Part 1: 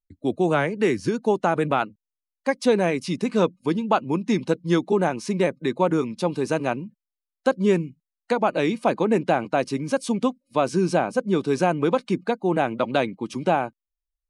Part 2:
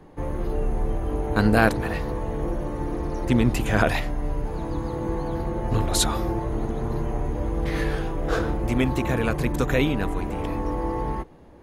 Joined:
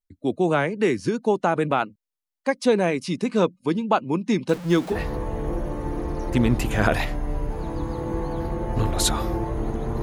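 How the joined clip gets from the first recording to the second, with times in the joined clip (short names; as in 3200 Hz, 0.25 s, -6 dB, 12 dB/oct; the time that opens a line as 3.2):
part 1
4.49–4.96 zero-crossing step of -31 dBFS
4.93 switch to part 2 from 1.88 s, crossfade 0.06 s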